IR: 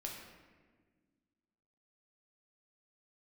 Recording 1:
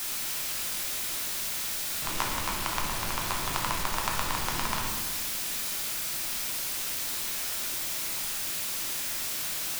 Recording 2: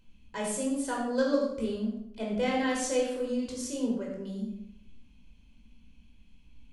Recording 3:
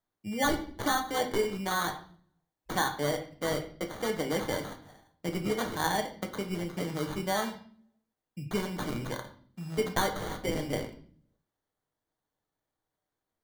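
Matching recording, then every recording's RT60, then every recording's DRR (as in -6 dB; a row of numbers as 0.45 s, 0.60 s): 1; 1.5 s, 0.75 s, 0.50 s; -1.0 dB, -2.5 dB, 4.0 dB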